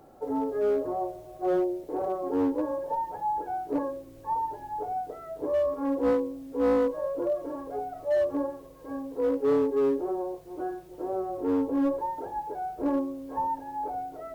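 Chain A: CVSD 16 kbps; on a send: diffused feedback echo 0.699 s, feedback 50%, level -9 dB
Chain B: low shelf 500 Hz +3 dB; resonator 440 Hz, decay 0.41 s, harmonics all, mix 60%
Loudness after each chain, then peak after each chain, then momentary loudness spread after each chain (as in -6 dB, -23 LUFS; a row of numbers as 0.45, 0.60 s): -29.5, -35.5 LUFS; -16.0, -20.5 dBFS; 8, 11 LU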